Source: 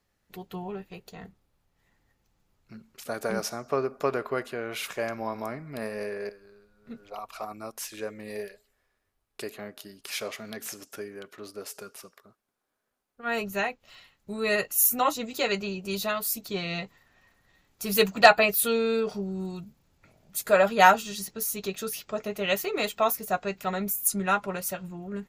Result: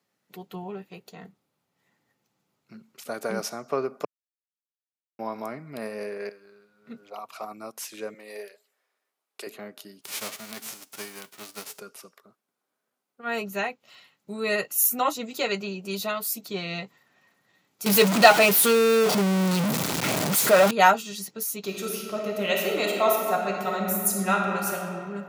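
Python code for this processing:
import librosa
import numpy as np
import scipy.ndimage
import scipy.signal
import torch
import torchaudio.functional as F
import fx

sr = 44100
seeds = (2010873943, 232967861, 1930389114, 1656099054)

y = fx.peak_eq(x, sr, hz=2000.0, db=4.5, octaves=1.9, at=(6.19, 6.93))
y = fx.highpass(y, sr, hz=440.0, slope=12, at=(8.14, 9.47))
y = fx.envelope_flatten(y, sr, power=0.3, at=(10.01, 11.78), fade=0.02)
y = fx.zero_step(y, sr, step_db=-18.0, at=(17.86, 20.71))
y = fx.reverb_throw(y, sr, start_s=21.59, length_s=3.34, rt60_s=2.3, drr_db=0.0)
y = fx.edit(y, sr, fx.silence(start_s=4.05, length_s=1.14), tone=tone)
y = scipy.signal.sosfilt(scipy.signal.butter(4, 140.0, 'highpass', fs=sr, output='sos'), y)
y = fx.notch(y, sr, hz=1700.0, q=17.0)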